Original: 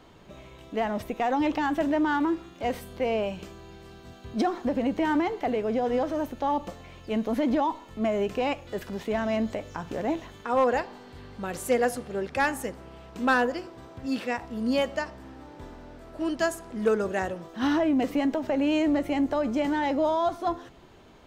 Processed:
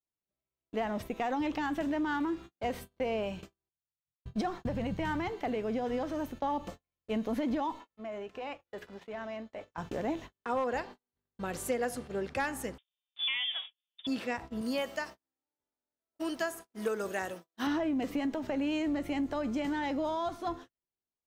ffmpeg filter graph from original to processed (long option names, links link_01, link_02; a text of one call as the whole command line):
ffmpeg -i in.wav -filter_complex "[0:a]asettb=1/sr,asplit=3[link_01][link_02][link_03];[link_01]atrim=end=3.694[link_04];[link_02]atrim=start=3.69:end=5.29,asetpts=PTS-STARTPTS,afade=type=in:duration=0.004:curve=qsin,afade=type=out:start_time=1.596:duration=0.004:curve=qsin,agate=range=-33dB:threshold=-35dB:ratio=3:release=100:detection=peak,lowshelf=frequency=200:width_type=q:width=3:gain=8.5[link_05];[link_03]atrim=start=5.286[link_06];[link_04][link_05]acrossfade=duration=0.004:curve1=hsin:curve2=qsin[link_07];[link_07][link_06]acrossfade=duration=0.004:curve1=qsin:curve2=hsin,asettb=1/sr,asplit=3[link_08][link_09][link_10];[link_08]atrim=end=7.804[link_11];[link_09]atrim=start=7.8:end=9.78,asetpts=PTS-STARTPTS,afade=type=in:duration=0.004:curve=qsin,afade=type=out:start_time=1.976:duration=0.004:curve=qsin,bandreject=frequency=60:width_type=h:width=6,bandreject=frequency=120:width_type=h:width=6,bandreject=frequency=180:width_type=h:width=6,bandreject=frequency=240:width_type=h:width=6,bandreject=frequency=300:width_type=h:width=6,bandreject=frequency=360:width_type=h:width=6,bandreject=frequency=420:width_type=h:width=6,bandreject=frequency=480:width_type=h:width=6,bandreject=frequency=540:width_type=h:width=6,acompressor=threshold=-34dB:ratio=12:attack=3.2:release=140:knee=1:detection=peak,asplit=2[link_12][link_13];[link_13]highpass=frequency=720:poles=1,volume=10dB,asoftclip=type=tanh:threshold=-21.5dB[link_14];[link_12][link_14]amix=inputs=2:normalize=0,lowpass=frequency=2800:poles=1,volume=-6dB[link_15];[link_10]atrim=start=9.776[link_16];[link_11][link_15]acrossfade=duration=0.004:curve1=hsin:curve2=qsin[link_17];[link_17][link_16]acrossfade=duration=0.004:curve1=qsin:curve2=hsin,asettb=1/sr,asplit=3[link_18][link_19][link_20];[link_18]atrim=end=12.784[link_21];[link_19]atrim=start=12.78:end=14.07,asetpts=PTS-STARTPTS,afade=type=in:duration=0.004:curve=qsin,afade=type=out:start_time=1.286:duration=0.004:curve=qsin,acompressor=threshold=-25dB:ratio=3:attack=3.2:release=140:knee=1:detection=peak,lowpass=frequency=3100:width_type=q:width=0.5098,lowpass=frequency=3100:width_type=q:width=0.6013,lowpass=frequency=3100:width_type=q:width=0.9,lowpass=frequency=3100:width_type=q:width=2.563,afreqshift=-3700[link_22];[link_20]atrim=start=14.066[link_23];[link_21][link_22]acrossfade=duration=0.004:curve1=hsin:curve2=qsin[link_24];[link_24][link_23]acrossfade=duration=0.004:curve1=qsin:curve2=hsin,asettb=1/sr,asplit=3[link_25][link_26][link_27];[link_25]atrim=end=14.614[link_28];[link_26]atrim=start=14.61:end=17.67,asetpts=PTS-STARTPTS,afade=type=in:duration=0.004:curve=qsin,afade=type=out:start_time=3.056:duration=0.004:curve=qsin,aemphasis=mode=production:type=bsi,acrossover=split=2900[link_29][link_30];[link_30]acompressor=threshold=-39dB:ratio=4:attack=1:release=60[link_31];[link_29][link_31]amix=inputs=2:normalize=0,bandreject=frequency=7200:width=19[link_32];[link_27]atrim=start=17.666[link_33];[link_28][link_32]acrossfade=duration=0.004:curve1=hsin:curve2=qsin[link_34];[link_34][link_33]acrossfade=duration=0.004:curve1=qsin:curve2=hsin,agate=range=-46dB:threshold=-38dB:ratio=16:detection=peak,adynamicequalizer=threshold=0.0141:dfrequency=620:dqfactor=0.85:tfrequency=620:tqfactor=0.85:attack=5:release=100:ratio=0.375:range=2.5:mode=cutabove:tftype=bell,acompressor=threshold=-25dB:ratio=6,volume=-3dB" out.wav